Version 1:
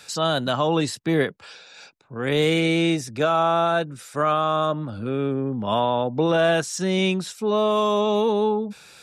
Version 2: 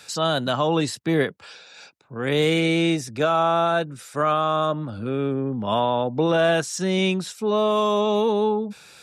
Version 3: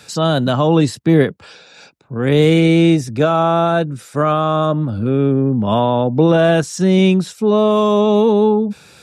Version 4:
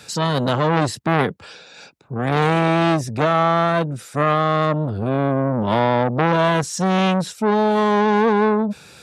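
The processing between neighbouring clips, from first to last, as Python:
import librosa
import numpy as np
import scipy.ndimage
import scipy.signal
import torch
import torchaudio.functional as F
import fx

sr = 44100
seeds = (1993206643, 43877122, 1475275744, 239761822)

y1 = scipy.signal.sosfilt(scipy.signal.butter(2, 45.0, 'highpass', fs=sr, output='sos'), x)
y2 = fx.low_shelf(y1, sr, hz=460.0, db=11.0)
y2 = y2 * librosa.db_to_amplitude(2.0)
y3 = fx.transformer_sat(y2, sr, knee_hz=1200.0)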